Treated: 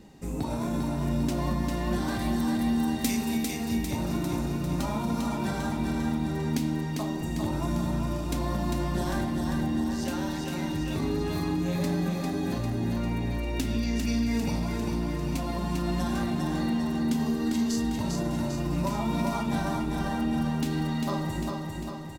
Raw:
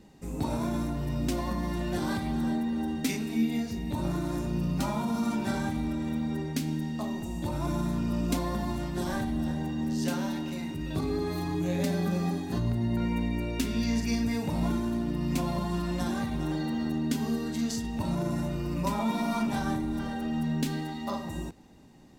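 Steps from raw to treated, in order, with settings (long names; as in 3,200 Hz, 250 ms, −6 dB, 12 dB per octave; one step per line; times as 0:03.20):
0:02.19–0:03.54: high-shelf EQ 4,600 Hz +10.5 dB
downward compressor, threshold −30 dBFS, peak gain reduction 8.5 dB
repeating echo 399 ms, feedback 58%, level −4 dB
level +3.5 dB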